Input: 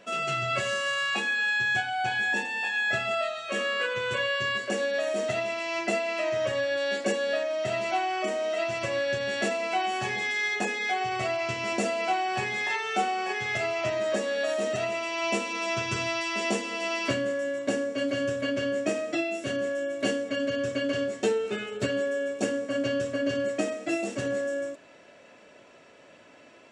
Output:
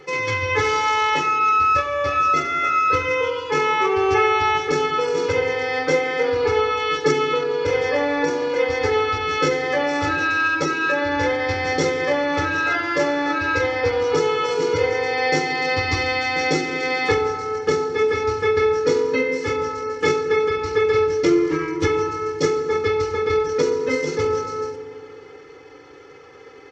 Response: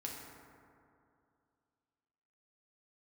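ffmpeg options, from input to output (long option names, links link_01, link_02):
-filter_complex "[0:a]aecho=1:1:1.8:0.95,asetrate=34006,aresample=44100,atempo=1.29684,asplit=2[link_01][link_02];[1:a]atrim=start_sample=2205[link_03];[link_02][link_03]afir=irnorm=-1:irlink=0,volume=-1.5dB[link_04];[link_01][link_04]amix=inputs=2:normalize=0,volume=2dB"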